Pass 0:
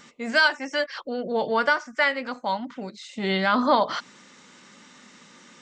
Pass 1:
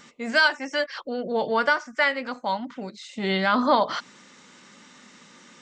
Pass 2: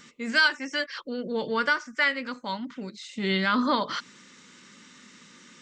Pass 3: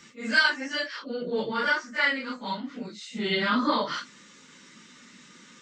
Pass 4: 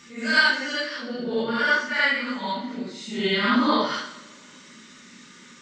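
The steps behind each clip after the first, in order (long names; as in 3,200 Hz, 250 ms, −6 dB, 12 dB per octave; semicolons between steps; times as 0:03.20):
no processing that can be heard
parametric band 720 Hz −14 dB 0.69 octaves
random phases in long frames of 100 ms
backwards echo 75 ms −6 dB; coupled-rooms reverb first 0.7 s, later 2.4 s, from −20 dB, DRR 3 dB; level +1 dB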